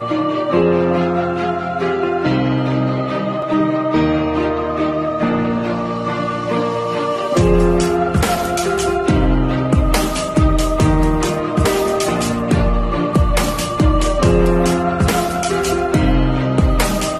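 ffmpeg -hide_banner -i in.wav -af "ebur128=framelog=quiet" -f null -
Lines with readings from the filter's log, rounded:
Integrated loudness:
  I:         -16.7 LUFS
  Threshold: -26.7 LUFS
Loudness range:
  LRA:         2.1 LU
  Threshold: -36.8 LUFS
  LRA low:   -18.0 LUFS
  LRA high:  -15.9 LUFS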